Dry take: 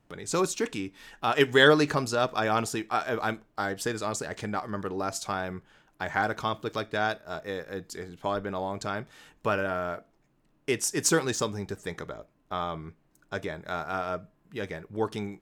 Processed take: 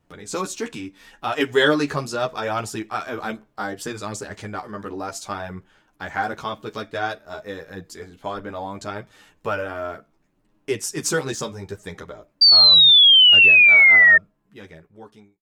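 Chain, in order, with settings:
fade-out on the ending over 1.70 s
multi-voice chorus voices 2, 0.71 Hz, delay 12 ms, depth 2.4 ms
sound drawn into the spectrogram fall, 0:12.41–0:14.18, 1,800–4,700 Hz −15 dBFS
level +4 dB

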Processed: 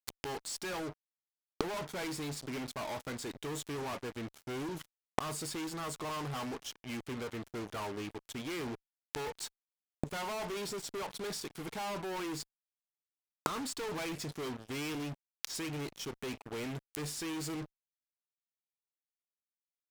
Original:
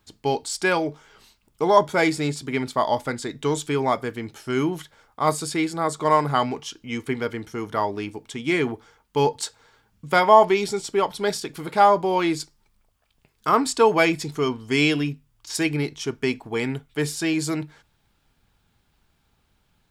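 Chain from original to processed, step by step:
fuzz pedal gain 37 dB, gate −38 dBFS
gate with flip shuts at −21 dBFS, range −25 dB
level +1.5 dB

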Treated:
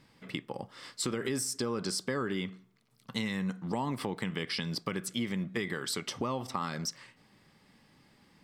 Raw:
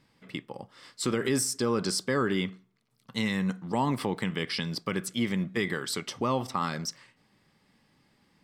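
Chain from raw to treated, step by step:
downward compressor 3 to 1, threshold −36 dBFS, peak gain reduction 10.5 dB
level +3.5 dB

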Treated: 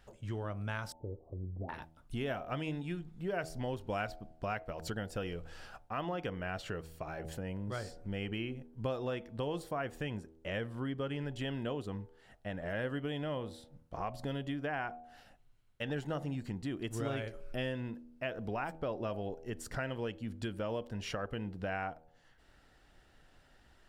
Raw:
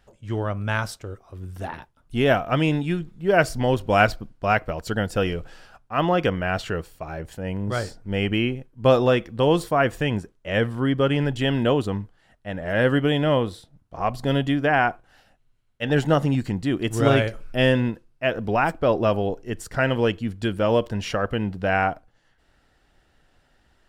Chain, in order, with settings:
0:00.92–0:01.69: inverse Chebyshev low-pass filter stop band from 1,600 Hz, stop band 50 dB
hum removal 80.41 Hz, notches 11
downward compressor 3 to 1, threshold −38 dBFS, peak gain reduction 19.5 dB
level −1.5 dB

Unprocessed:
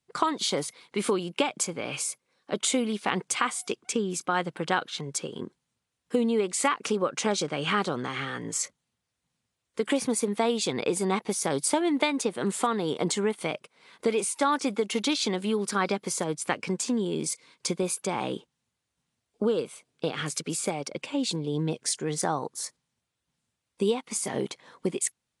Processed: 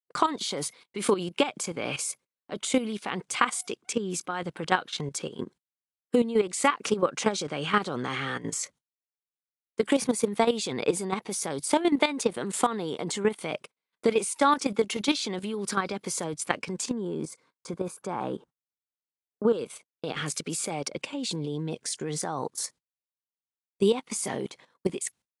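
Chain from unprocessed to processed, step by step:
noise gate −48 dBFS, range −34 dB
0:16.93–0:19.53: high shelf with overshoot 1,900 Hz −8.5 dB, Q 1.5
output level in coarse steps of 12 dB
level +4.5 dB

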